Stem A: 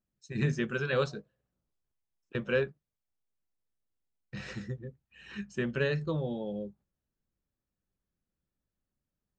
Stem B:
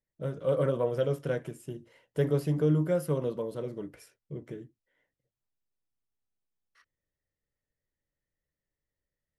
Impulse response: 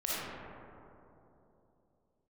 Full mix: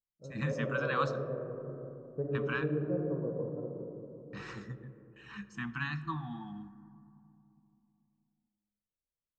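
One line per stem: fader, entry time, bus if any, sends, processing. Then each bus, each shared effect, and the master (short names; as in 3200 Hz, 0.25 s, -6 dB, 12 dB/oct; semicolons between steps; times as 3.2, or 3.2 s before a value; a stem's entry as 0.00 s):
-6.5 dB, 0.00 s, send -20.5 dB, gate with hold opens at -48 dBFS; FFT band-reject 340–680 Hz; bell 1100 Hz +14.5 dB 0.74 oct
-5.0 dB, 0.00 s, send -7 dB, Bessel low-pass 710 Hz, order 8; notches 50/100/150 Hz; upward expander 1.5:1, over -45 dBFS; auto duck -12 dB, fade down 0.20 s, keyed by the first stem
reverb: on, RT60 3.1 s, pre-delay 15 ms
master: dry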